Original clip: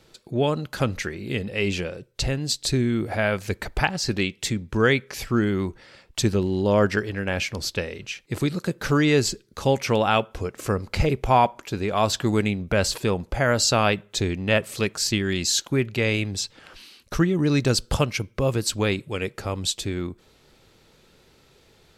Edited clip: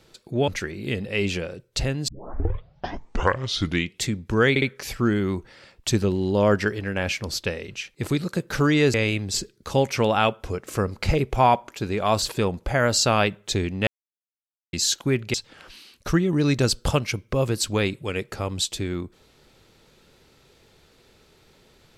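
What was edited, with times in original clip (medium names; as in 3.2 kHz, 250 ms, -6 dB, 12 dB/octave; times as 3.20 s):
0.48–0.91 s: delete
2.51 s: tape start 1.92 s
4.93 s: stutter 0.06 s, 3 plays
12.13–12.88 s: delete
14.53–15.39 s: mute
16.00–16.40 s: move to 9.25 s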